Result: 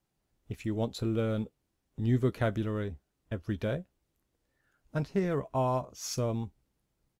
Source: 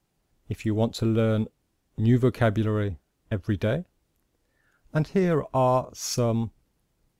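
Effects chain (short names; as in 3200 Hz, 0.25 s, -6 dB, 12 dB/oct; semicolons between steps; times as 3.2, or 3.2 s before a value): doubler 15 ms -12.5 dB; gain -7 dB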